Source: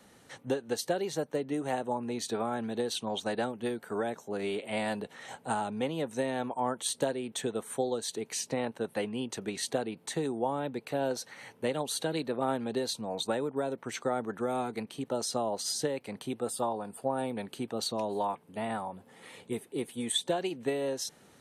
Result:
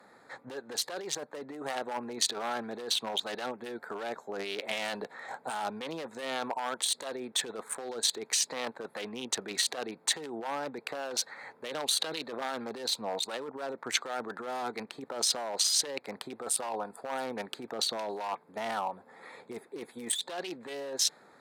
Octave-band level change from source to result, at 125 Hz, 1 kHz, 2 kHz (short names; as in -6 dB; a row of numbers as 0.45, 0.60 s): -13.0, -1.5, +2.5 dB